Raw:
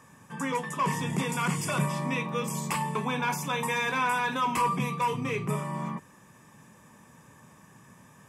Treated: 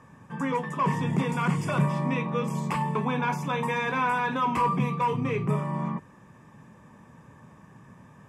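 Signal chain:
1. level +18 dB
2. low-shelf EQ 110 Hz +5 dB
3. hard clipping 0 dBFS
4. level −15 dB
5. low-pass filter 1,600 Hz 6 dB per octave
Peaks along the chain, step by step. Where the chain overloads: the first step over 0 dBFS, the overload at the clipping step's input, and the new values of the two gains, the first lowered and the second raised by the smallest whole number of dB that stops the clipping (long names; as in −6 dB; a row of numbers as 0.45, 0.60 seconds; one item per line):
+2.0, +3.0, 0.0, −15.0, −15.0 dBFS
step 1, 3.0 dB
step 1 +15 dB, step 4 −12 dB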